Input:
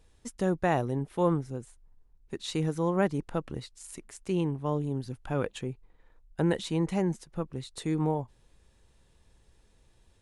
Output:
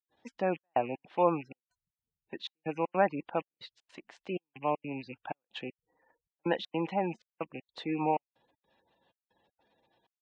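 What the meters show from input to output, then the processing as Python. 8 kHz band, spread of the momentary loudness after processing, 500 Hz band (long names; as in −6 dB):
below −20 dB, 20 LU, −2.0 dB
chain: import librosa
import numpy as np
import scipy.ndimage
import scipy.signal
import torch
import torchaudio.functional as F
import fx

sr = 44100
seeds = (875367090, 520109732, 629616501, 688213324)

y = fx.rattle_buzz(x, sr, strikes_db=-39.0, level_db=-34.0)
y = fx.step_gate(y, sr, bpm=158, pattern='.xxxxx..xx', floor_db=-60.0, edge_ms=4.5)
y = fx.spec_gate(y, sr, threshold_db=-30, keep='strong')
y = fx.cabinet(y, sr, low_hz=360.0, low_slope=12, high_hz=3800.0, hz=(410.0, 770.0, 1300.0, 2200.0), db=(-9, 5, -5, -4))
y = y * 10.0 ** (3.5 / 20.0)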